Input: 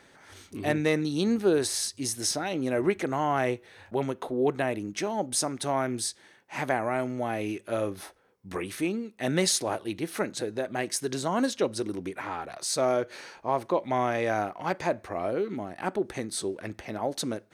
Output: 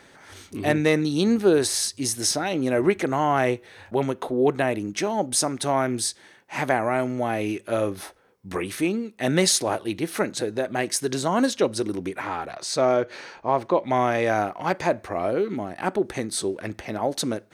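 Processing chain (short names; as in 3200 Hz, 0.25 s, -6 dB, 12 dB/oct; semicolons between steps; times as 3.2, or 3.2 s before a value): 12.51–13.87 bell 12000 Hz -12.5 dB 1.1 oct; gain +5 dB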